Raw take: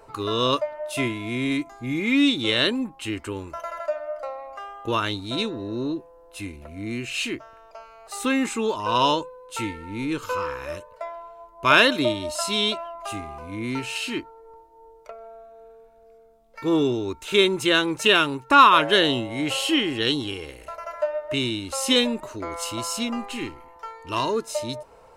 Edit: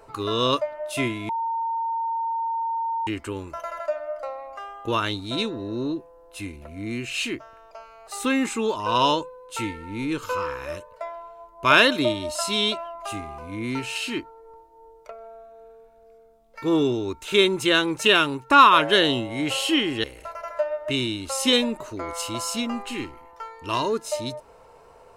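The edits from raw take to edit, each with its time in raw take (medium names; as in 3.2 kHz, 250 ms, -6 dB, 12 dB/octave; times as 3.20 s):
1.29–3.07 s: bleep 913 Hz -23.5 dBFS
20.04–20.47 s: delete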